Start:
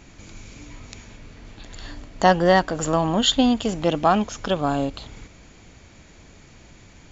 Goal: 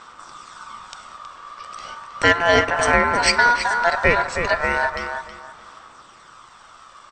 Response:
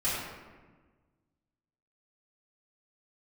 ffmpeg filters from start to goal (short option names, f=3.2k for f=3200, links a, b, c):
-filter_complex "[0:a]aeval=exprs='val(0)*sin(2*PI*1200*n/s)':c=same,aphaser=in_gain=1:out_gain=1:delay=1.8:decay=0.36:speed=0.35:type=sinusoidal,asplit=2[a][b];[b]adelay=319,lowpass=f=2.9k:p=1,volume=-6.5dB,asplit=2[c][d];[d]adelay=319,lowpass=f=2.9k:p=1,volume=0.25,asplit=2[e][f];[f]adelay=319,lowpass=f=2.9k:p=1,volume=0.25[g];[a][c][e][g]amix=inputs=4:normalize=0,asplit=2[h][i];[1:a]atrim=start_sample=2205,asetrate=48510,aresample=44100[j];[i][j]afir=irnorm=-1:irlink=0,volume=-23dB[k];[h][k]amix=inputs=2:normalize=0,volume=3dB"